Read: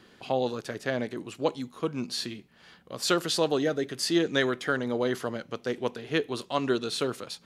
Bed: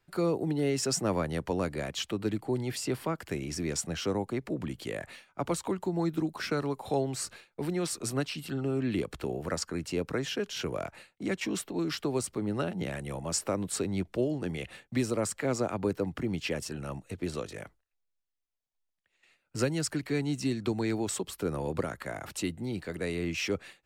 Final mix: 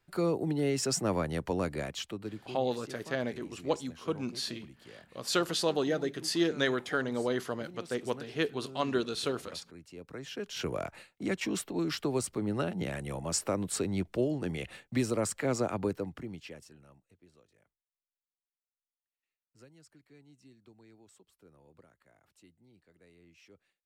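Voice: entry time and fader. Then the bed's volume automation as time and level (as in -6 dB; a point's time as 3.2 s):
2.25 s, -3.5 dB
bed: 1.81 s -1 dB
2.73 s -16.5 dB
9.95 s -16.5 dB
10.64 s -0.5 dB
15.79 s -0.5 dB
17.26 s -28 dB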